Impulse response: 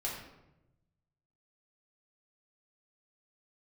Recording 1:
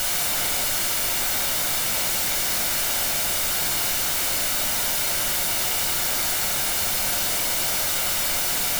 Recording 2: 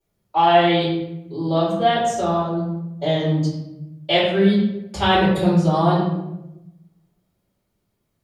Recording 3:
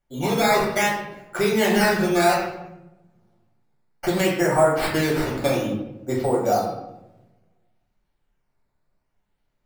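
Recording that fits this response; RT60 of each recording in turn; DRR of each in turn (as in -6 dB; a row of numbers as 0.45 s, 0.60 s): 3; 0.95 s, 0.95 s, 0.95 s; 2.5 dB, -14.0 dB, -5.5 dB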